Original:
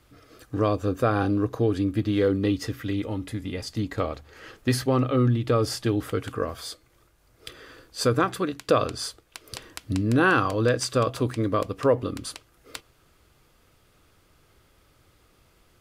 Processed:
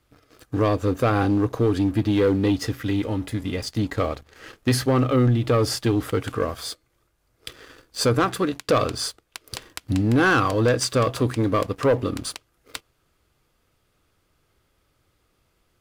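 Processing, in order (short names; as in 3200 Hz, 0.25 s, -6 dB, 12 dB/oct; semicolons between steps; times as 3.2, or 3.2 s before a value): sample leveller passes 2; gain -3 dB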